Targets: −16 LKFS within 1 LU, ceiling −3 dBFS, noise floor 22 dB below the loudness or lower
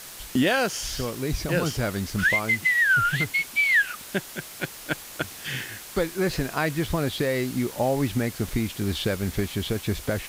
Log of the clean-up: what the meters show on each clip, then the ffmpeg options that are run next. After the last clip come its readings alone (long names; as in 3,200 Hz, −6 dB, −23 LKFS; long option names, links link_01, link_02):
background noise floor −41 dBFS; target noise floor −47 dBFS; integrated loudness −25.0 LKFS; sample peak −12.0 dBFS; target loudness −16.0 LKFS
→ -af "afftdn=noise_reduction=6:noise_floor=-41"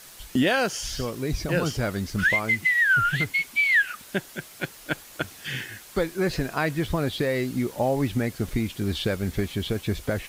background noise floor −47 dBFS; integrated loudness −25.0 LKFS; sample peak −12.5 dBFS; target loudness −16.0 LKFS
→ -af "volume=9dB"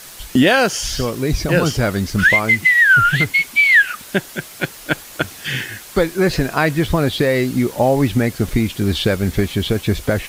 integrated loudness −16.0 LKFS; sample peak −3.5 dBFS; background noise floor −38 dBFS